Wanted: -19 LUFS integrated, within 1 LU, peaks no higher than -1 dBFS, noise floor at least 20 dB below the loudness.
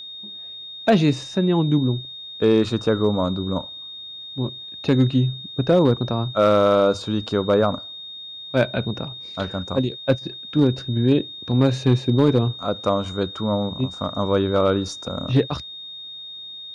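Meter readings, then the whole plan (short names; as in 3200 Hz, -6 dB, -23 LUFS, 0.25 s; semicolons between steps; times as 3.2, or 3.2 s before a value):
clipped 0.5%; flat tops at -8.0 dBFS; steady tone 3700 Hz; tone level -34 dBFS; loudness -21.5 LUFS; peak -8.0 dBFS; loudness target -19.0 LUFS
-> clip repair -8 dBFS; notch 3700 Hz, Q 30; gain +2.5 dB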